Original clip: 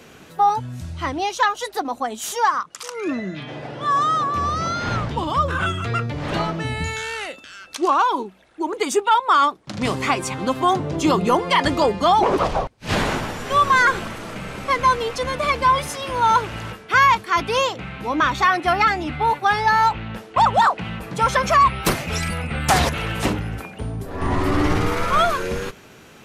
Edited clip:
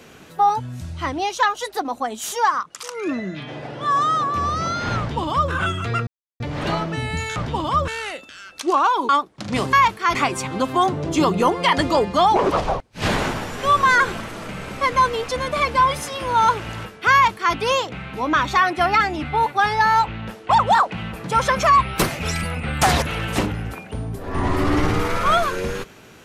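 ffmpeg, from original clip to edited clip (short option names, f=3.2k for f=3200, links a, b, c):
-filter_complex "[0:a]asplit=7[a][b][c][d][e][f][g];[a]atrim=end=6.07,asetpts=PTS-STARTPTS,afade=t=out:st=6.066:d=0.004:c=hsin,apad=pad_dur=0.33[h];[b]atrim=start=6.07:end=7.032,asetpts=PTS-STARTPTS,afade=t=in:d=0.004:c=hsin[i];[c]atrim=start=4.988:end=5.512[j];[d]atrim=start=7.028:end=8.242[k];[e]atrim=start=9.378:end=10.022[l];[f]atrim=start=16.998:end=17.422[m];[g]atrim=start=10.018[n];[h][i]concat=n=2:v=0:a=1[o];[o][j]acrossfade=d=0.004:c1=hsin:c2=hsin[p];[p][k]acrossfade=d=0.004:c1=hsin:c2=hsin[q];[q][l]acrossfade=d=0.004:c1=hsin:c2=hsin[r];[r][m]acrossfade=d=0.004:c1=hsin:c2=hsin[s];[s][n]acrossfade=d=0.004:c1=hsin:c2=hsin"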